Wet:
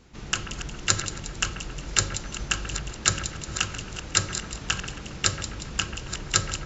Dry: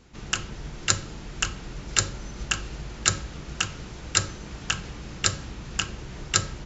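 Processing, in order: chunks repeated in reverse 475 ms, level -11.5 dB; two-band feedback delay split 2.4 kHz, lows 136 ms, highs 179 ms, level -11 dB

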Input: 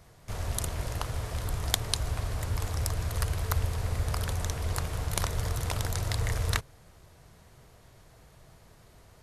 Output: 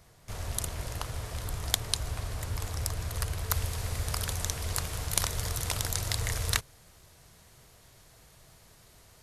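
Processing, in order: treble shelf 2.3 kHz +4.5 dB, from 3.50 s +10 dB; trim -3.5 dB

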